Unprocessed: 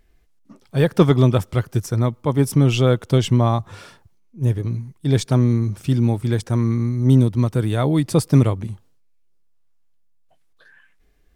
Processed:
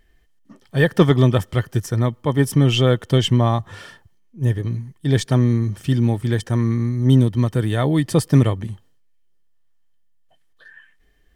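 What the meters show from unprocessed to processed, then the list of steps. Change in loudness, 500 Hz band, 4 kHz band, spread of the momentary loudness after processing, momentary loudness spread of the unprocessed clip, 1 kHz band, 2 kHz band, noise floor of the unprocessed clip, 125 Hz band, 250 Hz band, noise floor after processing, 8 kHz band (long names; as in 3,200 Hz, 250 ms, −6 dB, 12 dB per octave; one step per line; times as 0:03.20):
0.0 dB, 0.0 dB, +4.5 dB, 9 LU, 9 LU, 0.0 dB, +5.0 dB, −57 dBFS, 0.0 dB, 0.0 dB, −57 dBFS, 0.0 dB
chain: hollow resonant body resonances 1,800/3,100 Hz, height 15 dB, ringing for 45 ms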